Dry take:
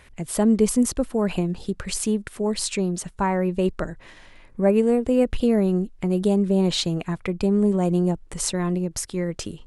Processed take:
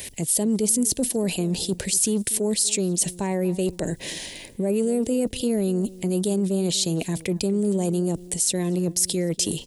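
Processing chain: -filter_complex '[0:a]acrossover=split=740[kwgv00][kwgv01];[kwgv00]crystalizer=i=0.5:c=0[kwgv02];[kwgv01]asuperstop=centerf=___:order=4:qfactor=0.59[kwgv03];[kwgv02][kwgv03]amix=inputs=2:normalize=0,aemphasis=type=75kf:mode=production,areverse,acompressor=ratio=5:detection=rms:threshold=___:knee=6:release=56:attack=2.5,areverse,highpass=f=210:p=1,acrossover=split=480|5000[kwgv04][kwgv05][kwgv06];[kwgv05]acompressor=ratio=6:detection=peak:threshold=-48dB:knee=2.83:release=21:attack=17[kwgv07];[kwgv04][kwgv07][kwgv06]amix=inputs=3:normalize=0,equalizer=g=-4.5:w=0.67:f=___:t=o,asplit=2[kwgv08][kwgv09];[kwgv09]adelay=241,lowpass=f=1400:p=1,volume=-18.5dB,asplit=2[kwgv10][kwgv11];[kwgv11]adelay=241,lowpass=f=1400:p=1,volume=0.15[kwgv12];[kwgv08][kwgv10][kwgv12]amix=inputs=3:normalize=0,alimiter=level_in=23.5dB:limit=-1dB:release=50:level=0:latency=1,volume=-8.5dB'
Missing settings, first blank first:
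1000, -34dB, 2300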